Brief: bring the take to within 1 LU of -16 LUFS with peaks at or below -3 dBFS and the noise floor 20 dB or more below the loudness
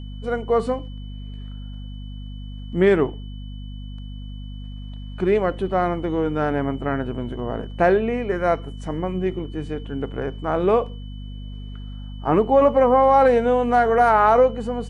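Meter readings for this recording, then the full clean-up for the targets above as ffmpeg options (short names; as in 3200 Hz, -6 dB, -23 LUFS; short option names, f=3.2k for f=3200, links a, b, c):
hum 50 Hz; harmonics up to 250 Hz; hum level -31 dBFS; steady tone 3000 Hz; tone level -49 dBFS; loudness -20.5 LUFS; peak -5.5 dBFS; loudness target -16.0 LUFS
-> -af "bandreject=f=50:t=h:w=6,bandreject=f=100:t=h:w=6,bandreject=f=150:t=h:w=6,bandreject=f=200:t=h:w=6,bandreject=f=250:t=h:w=6"
-af "bandreject=f=3k:w=30"
-af "volume=4.5dB,alimiter=limit=-3dB:level=0:latency=1"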